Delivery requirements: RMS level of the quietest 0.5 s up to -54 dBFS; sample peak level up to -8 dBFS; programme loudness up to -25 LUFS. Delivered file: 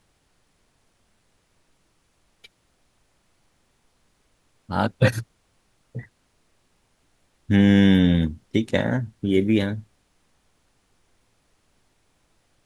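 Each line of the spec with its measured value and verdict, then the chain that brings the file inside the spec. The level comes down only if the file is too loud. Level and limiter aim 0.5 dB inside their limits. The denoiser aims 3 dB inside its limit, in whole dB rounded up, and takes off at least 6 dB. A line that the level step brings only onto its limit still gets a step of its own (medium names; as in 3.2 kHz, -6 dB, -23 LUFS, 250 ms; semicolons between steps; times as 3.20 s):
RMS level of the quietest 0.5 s -66 dBFS: pass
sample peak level -6.0 dBFS: fail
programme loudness -21.0 LUFS: fail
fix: trim -4.5 dB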